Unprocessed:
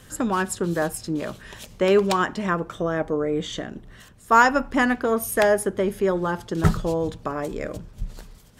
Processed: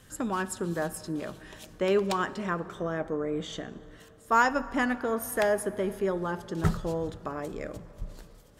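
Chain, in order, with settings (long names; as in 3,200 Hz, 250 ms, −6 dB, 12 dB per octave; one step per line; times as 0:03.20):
dense smooth reverb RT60 4 s, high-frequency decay 0.45×, DRR 16 dB
level −7 dB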